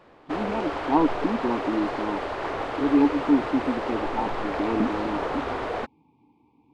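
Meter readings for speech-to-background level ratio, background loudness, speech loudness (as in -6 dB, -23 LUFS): 3.0 dB, -30.0 LUFS, -27.0 LUFS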